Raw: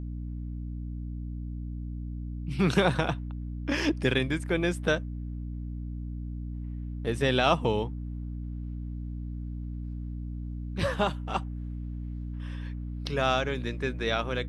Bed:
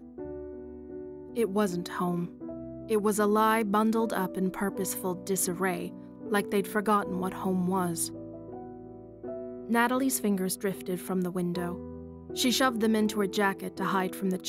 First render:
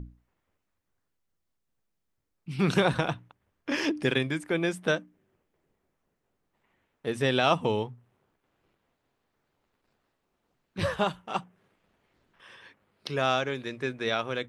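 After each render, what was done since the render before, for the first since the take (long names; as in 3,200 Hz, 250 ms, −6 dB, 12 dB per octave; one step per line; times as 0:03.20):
mains-hum notches 60/120/180/240/300 Hz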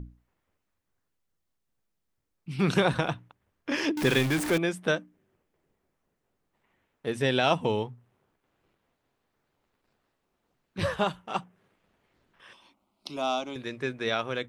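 0:03.97–0:04.58: converter with a step at zero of −26.5 dBFS
0:07.14–0:07.69: notch filter 1,200 Hz, Q 8.3
0:12.53–0:13.56: phaser with its sweep stopped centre 460 Hz, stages 6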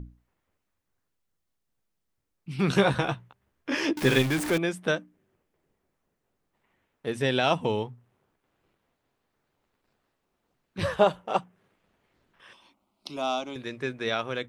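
0:02.69–0:04.22: double-tracking delay 15 ms −5.5 dB
0:10.99–0:11.39: parametric band 540 Hz +11 dB 1.1 octaves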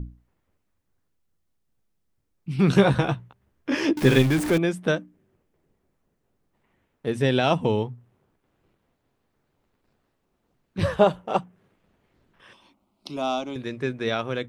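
low-shelf EQ 460 Hz +7.5 dB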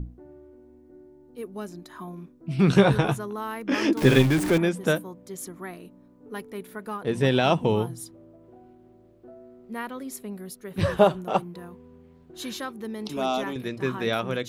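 mix in bed −9 dB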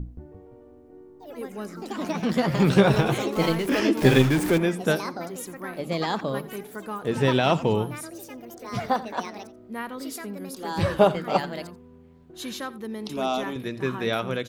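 delay with pitch and tempo change per echo 173 ms, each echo +4 semitones, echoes 3, each echo −6 dB
single-tap delay 86 ms −18 dB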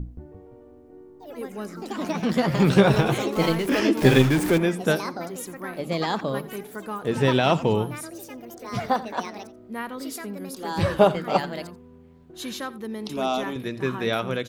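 level +1 dB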